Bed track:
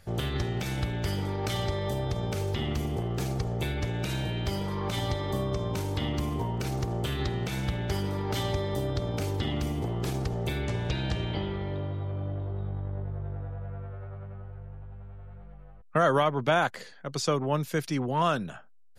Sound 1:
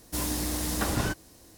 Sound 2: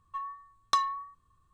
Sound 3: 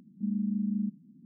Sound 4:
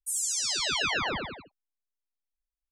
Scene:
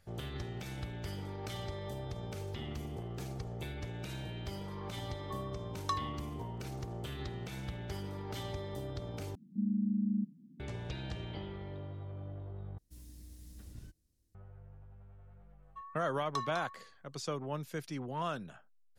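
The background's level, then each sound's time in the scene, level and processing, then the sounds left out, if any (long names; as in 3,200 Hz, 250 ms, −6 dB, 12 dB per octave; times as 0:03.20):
bed track −11 dB
0:05.16: mix in 2 −9 dB
0:09.35: overwrite with 3 −2 dB
0:12.78: overwrite with 1 −8.5 dB + guitar amp tone stack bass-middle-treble 10-0-1
0:15.62: mix in 2 −11.5 dB + single-tap delay 203 ms −6.5 dB
not used: 4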